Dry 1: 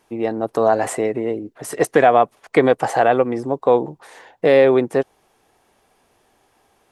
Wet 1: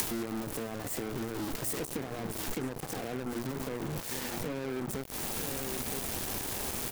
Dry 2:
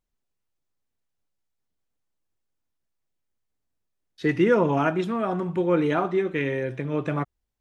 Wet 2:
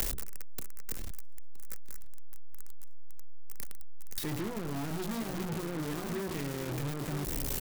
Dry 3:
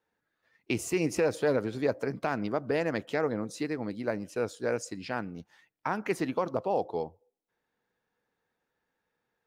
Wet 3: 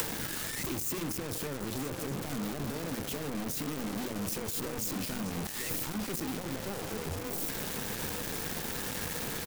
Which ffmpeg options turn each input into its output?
-filter_complex "[0:a]aeval=exprs='val(0)+0.5*0.158*sgn(val(0))':channel_layout=same,bandreject=frequency=60:width_type=h:width=6,bandreject=frequency=120:width_type=h:width=6,bandreject=frequency=180:width_type=h:width=6,bandreject=frequency=240:width_type=h:width=6,bandreject=frequency=300:width_type=h:width=6,bandreject=frequency=360:width_type=h:width=6,bandreject=frequency=420:width_type=h:width=6,acrossover=split=330[link_01][link_02];[link_02]acompressor=threshold=-30dB:ratio=10[link_03];[link_01][link_03]amix=inputs=2:normalize=0,acrossover=split=180|510|2000[link_04][link_05][link_06][link_07];[link_06]asoftclip=type=tanh:threshold=-32.5dB[link_08];[link_04][link_05][link_08][link_07]amix=inputs=4:normalize=0,asplit=2[link_09][link_10];[link_10]adelay=968,lowpass=frequency=4000:poles=1,volume=-10dB,asplit=2[link_11][link_12];[link_12]adelay=968,lowpass=frequency=4000:poles=1,volume=0.28,asplit=2[link_13][link_14];[link_14]adelay=968,lowpass=frequency=4000:poles=1,volume=0.28[link_15];[link_09][link_11][link_13][link_15]amix=inputs=4:normalize=0,acompressor=threshold=-39dB:ratio=3,acrusher=bits=5:mix=0:aa=0.5,highshelf=frequency=6500:gain=10.5"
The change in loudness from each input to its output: −17.5, −13.0, −3.0 LU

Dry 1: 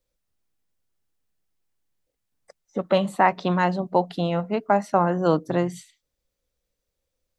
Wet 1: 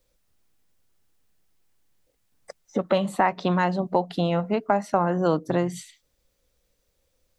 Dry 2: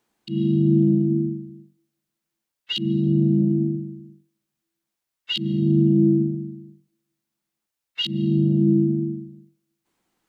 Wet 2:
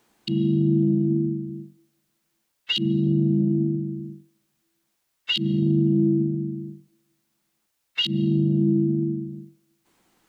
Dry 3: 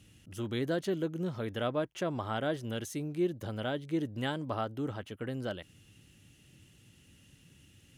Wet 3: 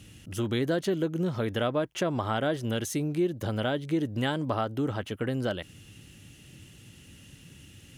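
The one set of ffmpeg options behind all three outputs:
-af "acompressor=threshold=-36dB:ratio=2,volume=9dB"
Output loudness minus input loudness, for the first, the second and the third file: −1.5, −2.0, +5.5 LU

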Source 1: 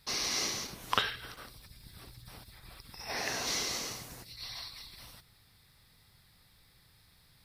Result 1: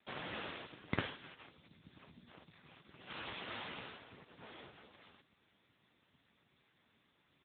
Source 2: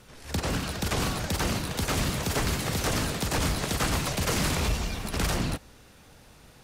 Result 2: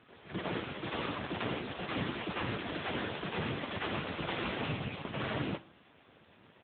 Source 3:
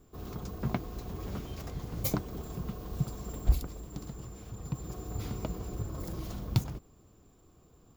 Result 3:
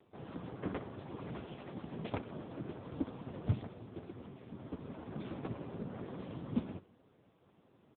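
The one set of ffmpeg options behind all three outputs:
-af "aresample=16000,aeval=exprs='abs(val(0))':channel_layout=same,aresample=44100,aecho=1:1:64|128:0.119|0.0345,volume=1dB" -ar 8000 -c:a libopencore_amrnb -b:a 6700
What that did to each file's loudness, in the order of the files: −11.5, −9.0, −6.5 LU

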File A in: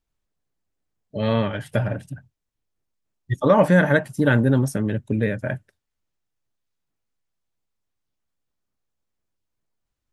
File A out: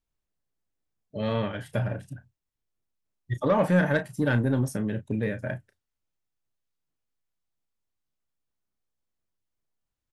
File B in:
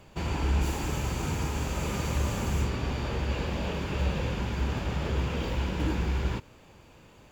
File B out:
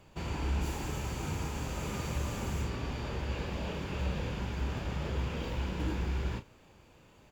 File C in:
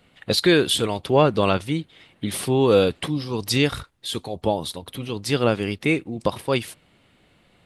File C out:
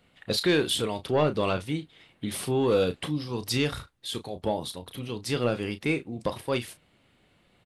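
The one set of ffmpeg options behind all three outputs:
-filter_complex "[0:a]asoftclip=type=tanh:threshold=-8.5dB,asplit=2[link_01][link_02];[link_02]adelay=33,volume=-10.5dB[link_03];[link_01][link_03]amix=inputs=2:normalize=0,volume=-5.5dB"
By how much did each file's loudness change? −6.0, −5.5, −6.0 LU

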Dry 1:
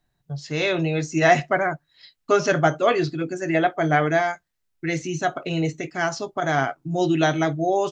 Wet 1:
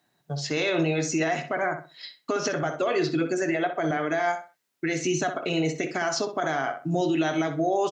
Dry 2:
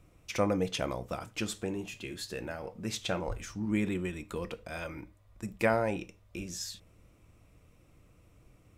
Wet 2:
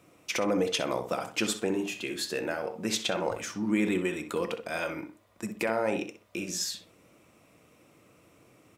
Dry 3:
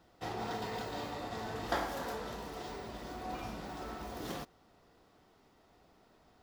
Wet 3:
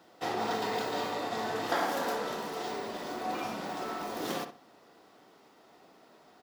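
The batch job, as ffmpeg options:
-filter_complex "[0:a]highpass=230,acompressor=threshold=-23dB:ratio=6,alimiter=limit=-23.5dB:level=0:latency=1:release=122,asplit=2[link_01][link_02];[link_02]adelay=63,lowpass=frequency=2800:poles=1,volume=-8dB,asplit=2[link_03][link_04];[link_04]adelay=63,lowpass=frequency=2800:poles=1,volume=0.28,asplit=2[link_05][link_06];[link_06]adelay=63,lowpass=frequency=2800:poles=1,volume=0.28[link_07];[link_01][link_03][link_05][link_07]amix=inputs=4:normalize=0,volume=7dB"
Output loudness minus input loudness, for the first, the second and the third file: −4.0, +4.0, +6.5 LU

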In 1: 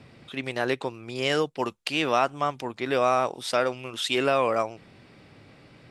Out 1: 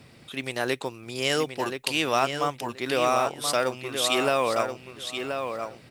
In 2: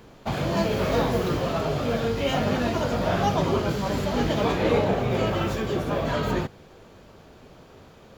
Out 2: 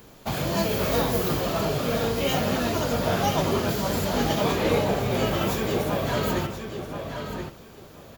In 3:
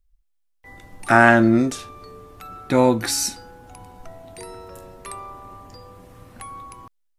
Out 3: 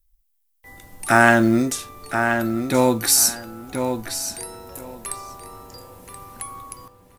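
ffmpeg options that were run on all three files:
-filter_complex "[0:a]aemphasis=mode=production:type=50fm,asplit=2[link_01][link_02];[link_02]adelay=1028,lowpass=frequency=4700:poles=1,volume=-6.5dB,asplit=2[link_03][link_04];[link_04]adelay=1028,lowpass=frequency=4700:poles=1,volume=0.18,asplit=2[link_05][link_06];[link_06]adelay=1028,lowpass=frequency=4700:poles=1,volume=0.18[link_07];[link_01][link_03][link_05][link_07]amix=inputs=4:normalize=0,acrusher=bits=8:mode=log:mix=0:aa=0.000001,volume=-1dB"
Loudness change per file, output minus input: −0.5, −0.5, −1.5 LU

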